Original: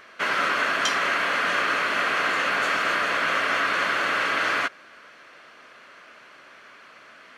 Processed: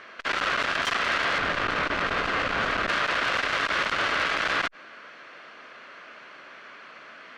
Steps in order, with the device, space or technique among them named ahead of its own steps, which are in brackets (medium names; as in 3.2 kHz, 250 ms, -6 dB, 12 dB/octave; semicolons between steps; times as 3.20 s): valve radio (band-pass 110–5000 Hz; valve stage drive 21 dB, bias 0.5; transformer saturation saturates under 1.6 kHz); 1.38–2.89 s: tilt EQ -2 dB/octave; trim +5 dB